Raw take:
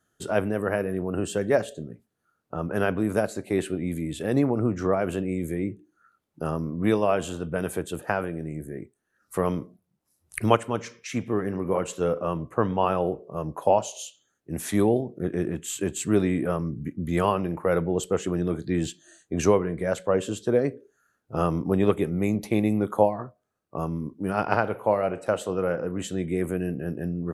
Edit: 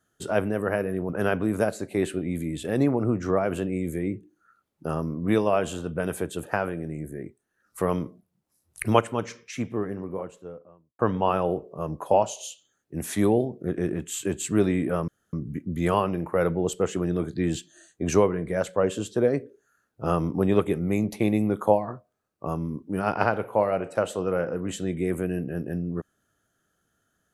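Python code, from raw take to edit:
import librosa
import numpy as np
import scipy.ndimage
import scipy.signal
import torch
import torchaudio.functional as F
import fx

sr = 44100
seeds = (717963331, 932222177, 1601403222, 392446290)

y = fx.studio_fade_out(x, sr, start_s=10.77, length_s=1.78)
y = fx.edit(y, sr, fx.cut(start_s=1.09, length_s=1.56),
    fx.insert_room_tone(at_s=16.64, length_s=0.25), tone=tone)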